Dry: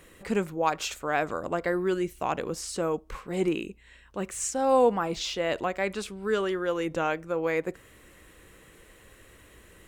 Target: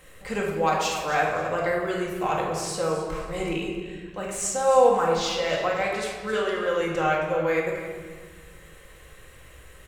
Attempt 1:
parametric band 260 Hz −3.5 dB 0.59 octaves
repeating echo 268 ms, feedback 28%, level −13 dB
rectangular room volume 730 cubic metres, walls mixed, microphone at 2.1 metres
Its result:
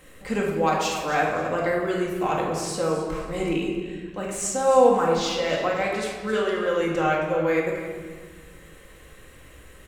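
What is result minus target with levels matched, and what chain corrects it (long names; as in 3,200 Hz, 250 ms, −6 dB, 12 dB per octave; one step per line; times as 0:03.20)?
250 Hz band +3.5 dB
parametric band 260 Hz −14 dB 0.59 octaves
repeating echo 268 ms, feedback 28%, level −13 dB
rectangular room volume 730 cubic metres, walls mixed, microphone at 2.1 metres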